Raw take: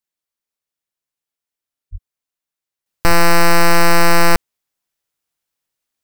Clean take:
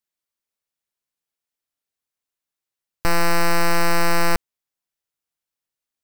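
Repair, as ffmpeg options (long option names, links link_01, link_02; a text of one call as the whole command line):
ffmpeg -i in.wav -filter_complex "[0:a]asplit=3[link_01][link_02][link_03];[link_01]afade=type=out:start_time=1.91:duration=0.02[link_04];[link_02]highpass=frequency=140:width=0.5412,highpass=frequency=140:width=1.3066,afade=type=in:start_time=1.91:duration=0.02,afade=type=out:start_time=2.03:duration=0.02[link_05];[link_03]afade=type=in:start_time=2.03:duration=0.02[link_06];[link_04][link_05][link_06]amix=inputs=3:normalize=0,asplit=3[link_07][link_08][link_09];[link_07]afade=type=out:start_time=3.07:duration=0.02[link_10];[link_08]highpass=frequency=140:width=0.5412,highpass=frequency=140:width=1.3066,afade=type=in:start_time=3.07:duration=0.02,afade=type=out:start_time=3.19:duration=0.02[link_11];[link_09]afade=type=in:start_time=3.19:duration=0.02[link_12];[link_10][link_11][link_12]amix=inputs=3:normalize=0,asetnsamples=nb_out_samples=441:pad=0,asendcmd='2.86 volume volume -7dB',volume=0dB" out.wav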